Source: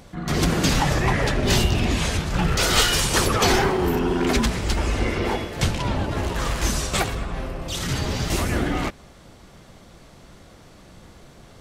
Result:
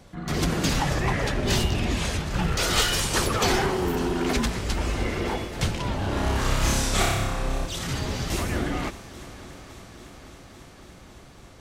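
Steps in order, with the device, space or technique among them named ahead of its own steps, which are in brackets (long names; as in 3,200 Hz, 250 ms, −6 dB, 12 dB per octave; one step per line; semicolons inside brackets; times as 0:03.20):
0:05.99–0:07.66: flutter between parallel walls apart 5.2 metres, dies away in 1 s
multi-head tape echo (echo machine with several playback heads 279 ms, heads second and third, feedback 70%, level −19.5 dB; tape wow and flutter 20 cents)
level −4 dB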